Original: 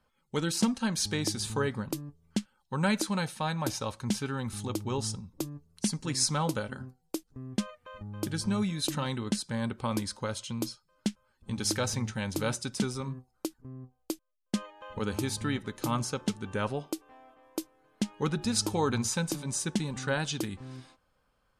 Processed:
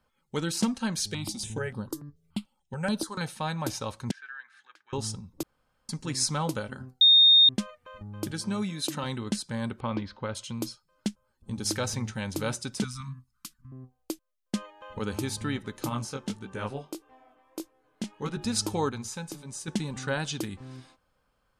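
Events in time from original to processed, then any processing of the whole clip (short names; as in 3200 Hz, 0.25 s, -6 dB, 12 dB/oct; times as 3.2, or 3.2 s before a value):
1–3.21 step phaser 6.9 Hz 260–7100 Hz
4.11–4.93 ladder band-pass 1700 Hz, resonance 85%
5.43–5.89 room tone
7.01–7.49 bleep 3680 Hz -13.5 dBFS
8.31–9.04 HPF 160 Hz
9.8–10.35 LPF 3500 Hz 24 dB/oct
11.08–11.66 bell 2300 Hz -7.5 dB 2.2 oct
12.84–13.72 elliptic band-stop 220–1100 Hz
15.89–18.37 chorus 1.6 Hz, delay 15.5 ms, depth 6.8 ms
18.89–19.68 resonator 420 Hz, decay 0.2 s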